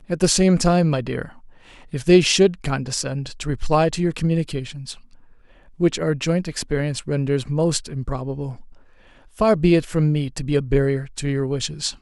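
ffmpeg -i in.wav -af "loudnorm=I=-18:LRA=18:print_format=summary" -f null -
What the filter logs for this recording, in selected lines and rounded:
Input Integrated:    -20.8 LUFS
Input True Peak:      -2.2 dBTP
Input LRA:             4.0 LU
Input Threshold:     -31.5 LUFS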